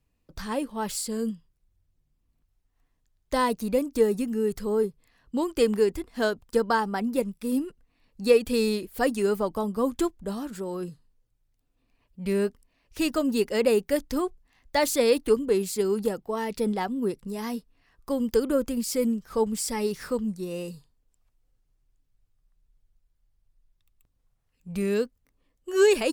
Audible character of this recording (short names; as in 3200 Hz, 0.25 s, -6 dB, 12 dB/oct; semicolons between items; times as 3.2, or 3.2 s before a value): noise floor -73 dBFS; spectral tilt -4.5 dB/oct